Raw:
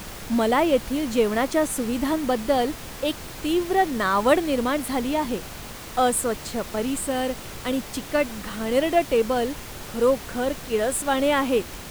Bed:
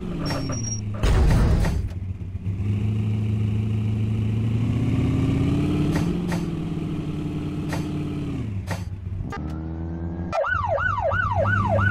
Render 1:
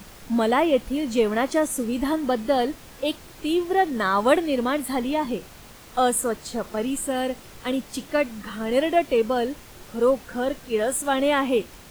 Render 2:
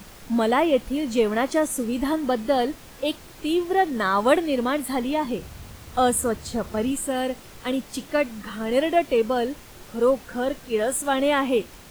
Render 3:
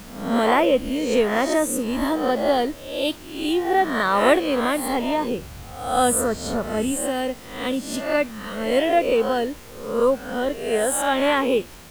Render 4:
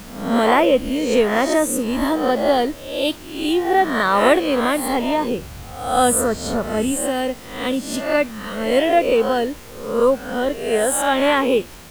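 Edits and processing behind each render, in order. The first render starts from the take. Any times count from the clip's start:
noise print and reduce 8 dB
5.38–6.92 s: peaking EQ 81 Hz +13.5 dB 1.6 oct
reverse spectral sustain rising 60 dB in 0.68 s
trim +3 dB; peak limiter -2 dBFS, peak gain reduction 2 dB

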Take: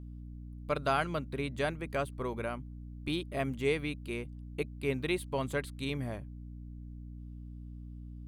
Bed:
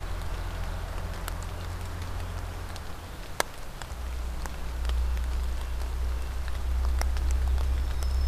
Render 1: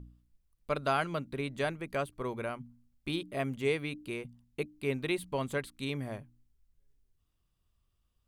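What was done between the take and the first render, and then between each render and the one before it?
de-hum 60 Hz, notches 5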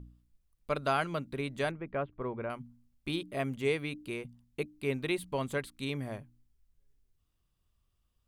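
1.71–2.50 s: Gaussian low-pass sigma 3.7 samples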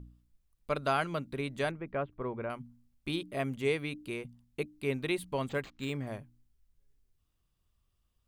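5.49–6.07 s: decimation joined by straight lines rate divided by 4×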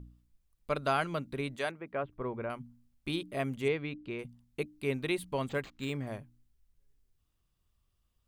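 1.55–2.03 s: high-pass 580 Hz -> 220 Hz 6 dB/octave; 3.68–4.19 s: distance through air 200 m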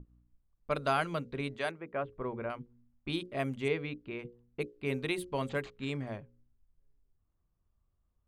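level-controlled noise filter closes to 1.1 kHz, open at -28.5 dBFS; hum notches 60/120/180/240/300/360/420/480/540 Hz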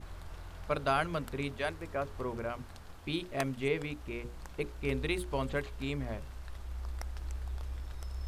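add bed -12.5 dB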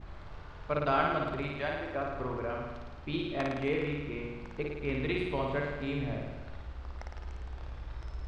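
distance through air 180 m; flutter echo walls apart 9.4 m, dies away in 1.2 s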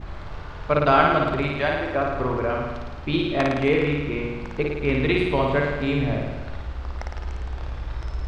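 trim +11 dB

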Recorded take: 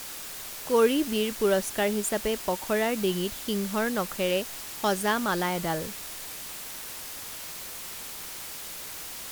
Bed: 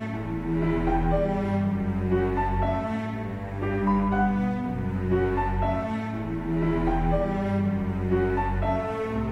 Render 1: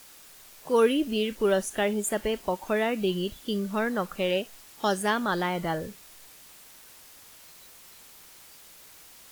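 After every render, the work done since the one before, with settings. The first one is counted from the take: noise print and reduce 12 dB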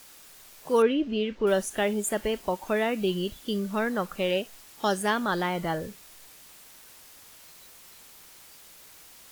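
0.82–1.47 s: distance through air 190 m; 3.05–3.62 s: block-companded coder 7-bit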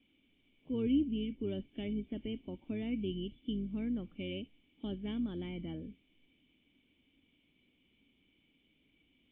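octave divider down 2 oct, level -6 dB; cascade formant filter i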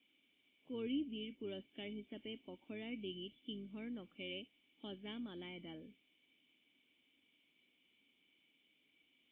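high-pass 780 Hz 6 dB/octave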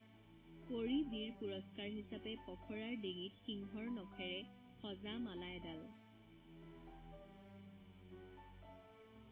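add bed -34 dB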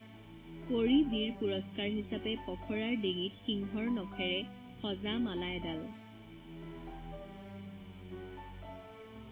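trim +11.5 dB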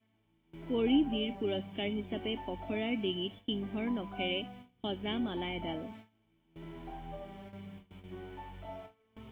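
gate with hold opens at -40 dBFS; dynamic bell 740 Hz, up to +7 dB, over -57 dBFS, Q 2.4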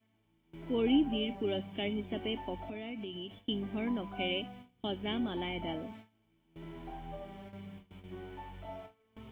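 2.68–3.42 s: compression, threshold -38 dBFS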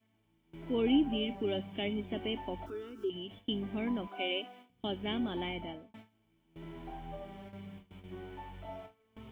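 2.66–3.10 s: FFT filter 100 Hz 0 dB, 170 Hz -21 dB, 390 Hz +12 dB, 660 Hz -20 dB, 960 Hz -5 dB, 1.4 kHz +13 dB, 2.2 kHz -17 dB, 3.4 kHz -6 dB, 5.3 kHz +10 dB; 4.07–4.70 s: high-pass 290 Hz 24 dB/octave; 5.49–5.94 s: fade out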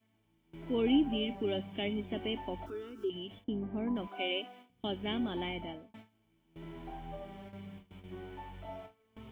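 3.44–3.96 s: low-pass 1.2 kHz

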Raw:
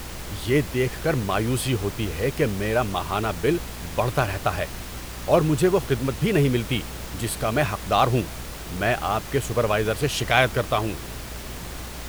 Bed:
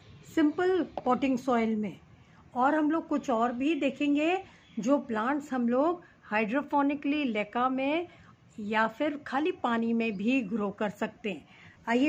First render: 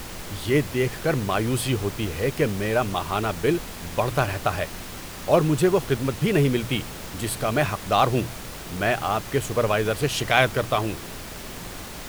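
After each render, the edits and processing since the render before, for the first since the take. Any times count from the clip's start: de-hum 60 Hz, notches 2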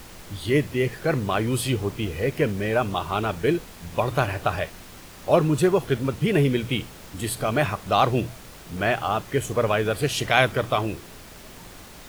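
noise print and reduce 7 dB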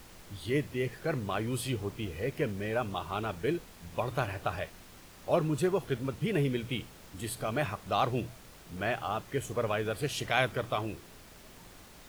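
trim -9 dB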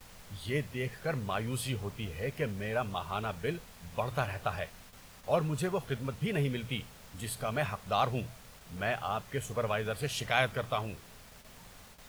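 gate with hold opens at -42 dBFS; peaking EQ 330 Hz -10.5 dB 0.48 oct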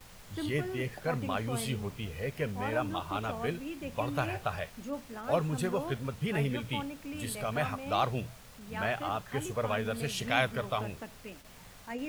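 add bed -12.5 dB

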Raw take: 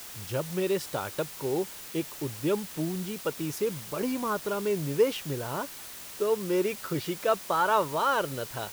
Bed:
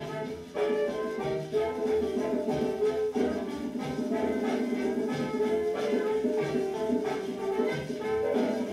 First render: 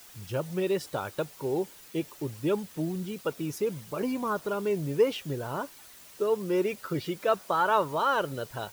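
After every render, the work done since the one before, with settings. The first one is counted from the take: noise reduction 9 dB, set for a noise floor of -43 dBFS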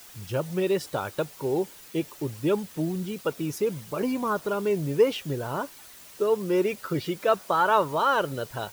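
trim +3 dB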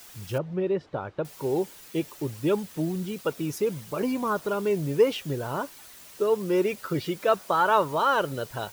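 0.38–1.25 s: tape spacing loss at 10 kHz 38 dB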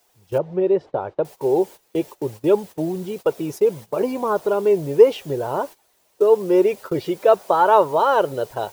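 high-order bell 580 Hz +9 dB; gate -33 dBFS, range -16 dB

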